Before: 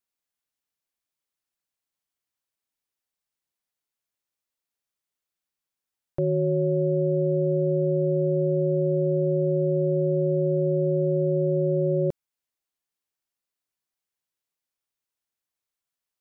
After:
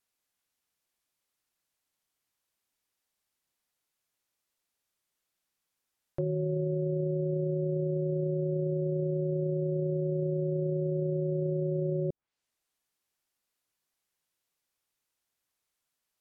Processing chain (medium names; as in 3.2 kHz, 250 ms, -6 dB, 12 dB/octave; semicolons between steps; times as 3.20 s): peak limiter -27 dBFS, peak gain reduction 12 dB; low-pass that closes with the level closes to 490 Hz, closed at -32.5 dBFS; trim +5 dB